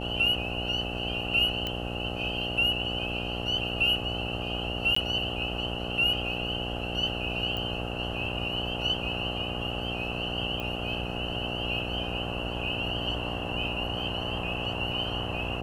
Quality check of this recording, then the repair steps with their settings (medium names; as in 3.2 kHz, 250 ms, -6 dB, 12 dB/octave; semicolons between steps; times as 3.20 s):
buzz 60 Hz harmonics 14 -35 dBFS
1.67 s: pop -17 dBFS
4.95–4.96 s: dropout 14 ms
7.57 s: pop -21 dBFS
10.60 s: pop -21 dBFS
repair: de-click; de-hum 60 Hz, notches 14; interpolate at 4.95 s, 14 ms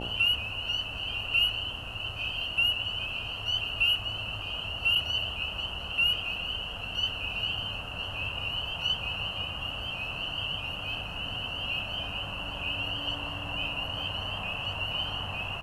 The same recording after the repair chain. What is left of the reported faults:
nothing left